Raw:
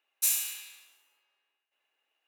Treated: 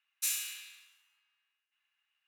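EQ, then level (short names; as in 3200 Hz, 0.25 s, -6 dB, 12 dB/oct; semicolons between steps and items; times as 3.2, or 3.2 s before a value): HPF 1200 Hz 24 dB/oct; high shelf 7900 Hz -10.5 dB; 0.0 dB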